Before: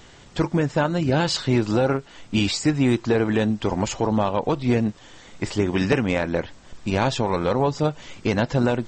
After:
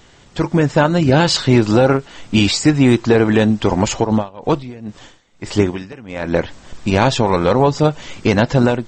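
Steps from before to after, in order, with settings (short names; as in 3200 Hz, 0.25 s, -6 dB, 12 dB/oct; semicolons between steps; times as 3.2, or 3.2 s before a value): AGC; 4.03–6.31 dB-linear tremolo 2.9 Hz -> 1.1 Hz, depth 23 dB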